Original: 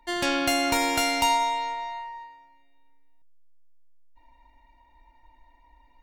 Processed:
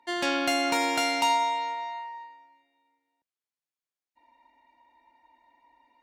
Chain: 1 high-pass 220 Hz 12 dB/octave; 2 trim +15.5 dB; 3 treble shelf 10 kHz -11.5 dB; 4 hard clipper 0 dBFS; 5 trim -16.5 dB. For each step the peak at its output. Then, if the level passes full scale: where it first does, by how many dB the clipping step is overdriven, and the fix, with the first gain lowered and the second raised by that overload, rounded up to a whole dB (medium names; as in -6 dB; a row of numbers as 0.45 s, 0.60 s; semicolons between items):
-11.5 dBFS, +4.0 dBFS, +3.5 dBFS, 0.0 dBFS, -16.5 dBFS; step 2, 3.5 dB; step 2 +11.5 dB, step 5 -12.5 dB